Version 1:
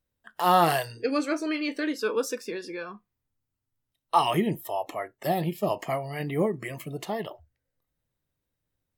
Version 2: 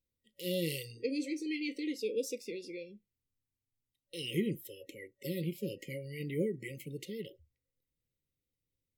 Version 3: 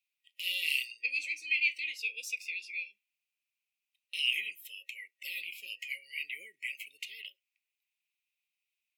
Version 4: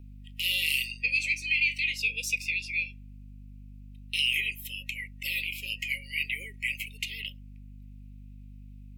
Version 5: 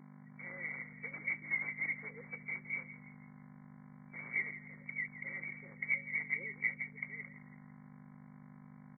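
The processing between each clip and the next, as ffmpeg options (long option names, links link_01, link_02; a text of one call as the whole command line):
ffmpeg -i in.wav -af "afftfilt=real='re*(1-between(b*sr/4096,560,1900))':imag='im*(1-between(b*sr/4096,560,1900))':win_size=4096:overlap=0.75,volume=-7dB" out.wav
ffmpeg -i in.wav -af "highpass=frequency=2500:width_type=q:width=9.1" out.wav
ffmpeg -i in.wav -filter_complex "[0:a]aeval=exprs='val(0)+0.00224*(sin(2*PI*50*n/s)+sin(2*PI*2*50*n/s)/2+sin(2*PI*3*50*n/s)/3+sin(2*PI*4*50*n/s)/4+sin(2*PI*5*50*n/s)/5)':channel_layout=same,acrossover=split=450|6200[link_01][link_02][link_03];[link_02]alimiter=level_in=1.5dB:limit=-24dB:level=0:latency=1:release=44,volume=-1.5dB[link_04];[link_01][link_04][link_03]amix=inputs=3:normalize=0,volume=8dB" out.wav
ffmpeg -i in.wav -filter_complex "[0:a]acrusher=bits=4:mode=log:mix=0:aa=0.000001,afftfilt=real='re*between(b*sr/4096,140,2300)':imag='im*between(b*sr/4096,140,2300)':win_size=4096:overlap=0.75,asplit=5[link_01][link_02][link_03][link_04][link_05];[link_02]adelay=167,afreqshift=-32,volume=-14dB[link_06];[link_03]adelay=334,afreqshift=-64,volume=-20.9dB[link_07];[link_04]adelay=501,afreqshift=-96,volume=-27.9dB[link_08];[link_05]adelay=668,afreqshift=-128,volume=-34.8dB[link_09];[link_01][link_06][link_07][link_08][link_09]amix=inputs=5:normalize=0" out.wav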